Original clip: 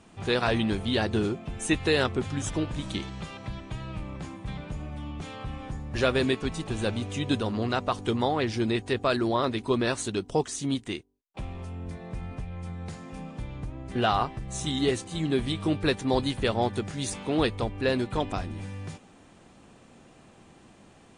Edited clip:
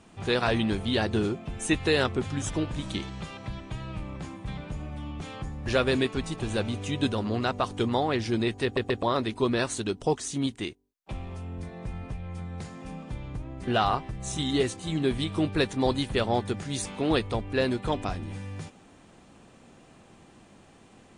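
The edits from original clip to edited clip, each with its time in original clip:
5.42–5.7 cut
8.92 stutter in place 0.13 s, 3 plays

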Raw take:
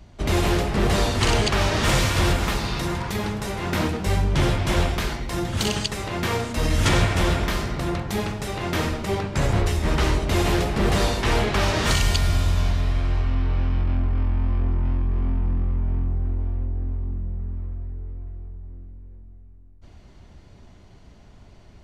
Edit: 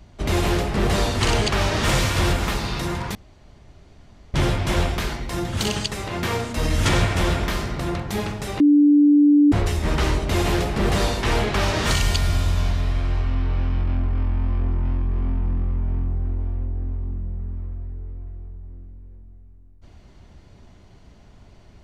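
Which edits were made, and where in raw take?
3.15–4.34 room tone
8.6–9.52 bleep 292 Hz -10.5 dBFS

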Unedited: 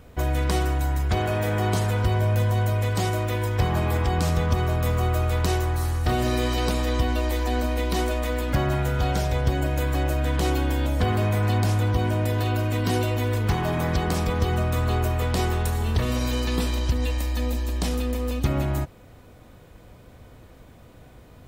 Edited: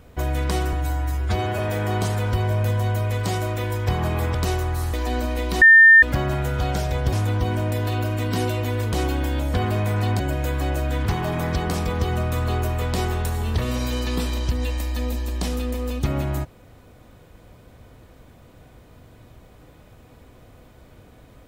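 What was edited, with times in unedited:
0.73–1.3 stretch 1.5×
4.06–5.36 cut
5.95–7.34 cut
8.02–8.43 bleep 1800 Hz -6.5 dBFS
9.53–10.39 swap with 11.66–13.46

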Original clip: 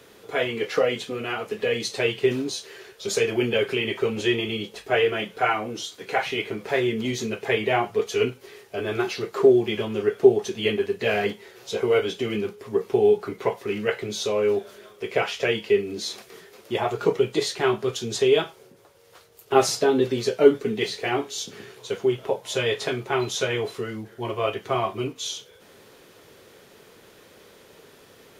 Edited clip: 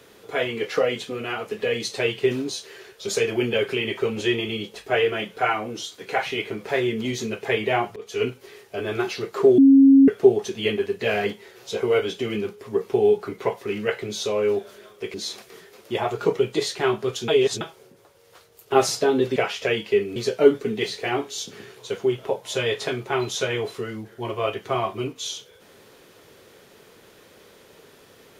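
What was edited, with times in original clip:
7.96–8.28 fade in, from -20.5 dB
9.58–10.08 bleep 272 Hz -8.5 dBFS
15.14–15.94 move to 20.16
18.08–18.41 reverse

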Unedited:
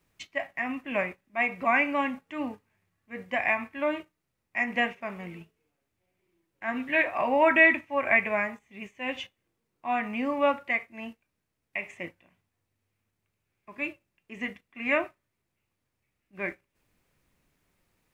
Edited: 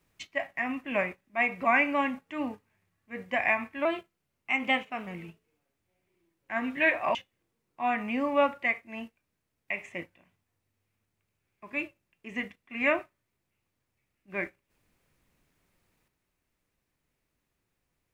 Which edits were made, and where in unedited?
3.85–5.19 speed 110%
7.27–9.2 cut

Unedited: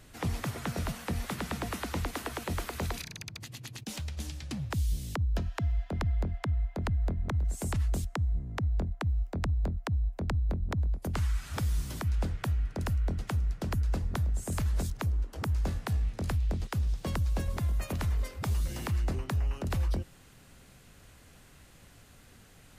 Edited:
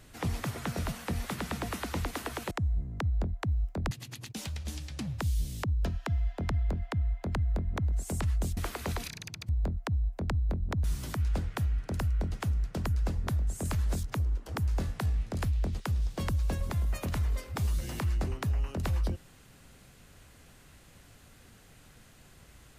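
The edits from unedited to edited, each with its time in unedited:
2.51–3.43 swap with 8.09–9.49
10.84–11.71 cut

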